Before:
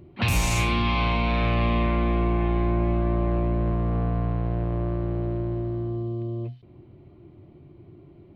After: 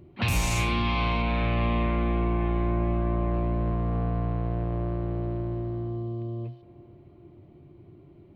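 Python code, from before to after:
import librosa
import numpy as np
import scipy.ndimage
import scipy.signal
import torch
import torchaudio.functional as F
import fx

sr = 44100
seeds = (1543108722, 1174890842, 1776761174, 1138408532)

y = fx.lowpass(x, sr, hz=3900.0, slope=12, at=(1.22, 3.34))
y = fx.echo_wet_bandpass(y, sr, ms=467, feedback_pct=49, hz=740.0, wet_db=-17.0)
y = y * 10.0 ** (-2.5 / 20.0)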